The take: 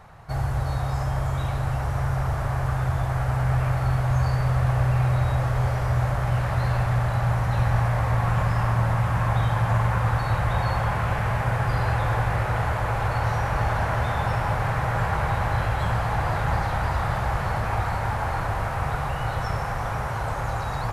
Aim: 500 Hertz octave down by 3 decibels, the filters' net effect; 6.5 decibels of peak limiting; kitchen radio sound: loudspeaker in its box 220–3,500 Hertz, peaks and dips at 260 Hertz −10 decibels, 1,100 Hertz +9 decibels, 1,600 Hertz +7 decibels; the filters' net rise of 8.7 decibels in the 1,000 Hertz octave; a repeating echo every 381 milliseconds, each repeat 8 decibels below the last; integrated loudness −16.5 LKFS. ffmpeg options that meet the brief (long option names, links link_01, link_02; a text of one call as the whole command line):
ffmpeg -i in.wav -af "equalizer=frequency=500:width_type=o:gain=-7,equalizer=frequency=1000:width_type=o:gain=6,alimiter=limit=-15.5dB:level=0:latency=1,highpass=220,equalizer=frequency=260:width_type=q:width=4:gain=-10,equalizer=frequency=1100:width_type=q:width=4:gain=9,equalizer=frequency=1600:width_type=q:width=4:gain=7,lowpass=frequency=3500:width=0.5412,lowpass=frequency=3500:width=1.3066,aecho=1:1:381|762|1143|1524|1905:0.398|0.159|0.0637|0.0255|0.0102,volume=5.5dB" out.wav